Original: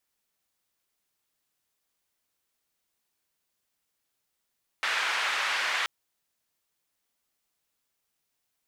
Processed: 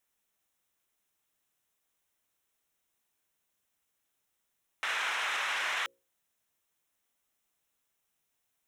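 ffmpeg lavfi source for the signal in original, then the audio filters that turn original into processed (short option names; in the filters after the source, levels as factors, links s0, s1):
-f lavfi -i "anoisesrc=c=white:d=1.03:r=44100:seed=1,highpass=f=1300,lowpass=f=2000,volume=-10dB"
-af "equalizer=f=4600:t=o:w=0.21:g=-13,bandreject=f=60:t=h:w=6,bandreject=f=120:t=h:w=6,bandreject=f=180:t=h:w=6,bandreject=f=240:t=h:w=6,bandreject=f=300:t=h:w=6,bandreject=f=360:t=h:w=6,bandreject=f=420:t=h:w=6,bandreject=f=480:t=h:w=6,bandreject=f=540:t=h:w=6,alimiter=limit=0.0631:level=0:latency=1:release=18"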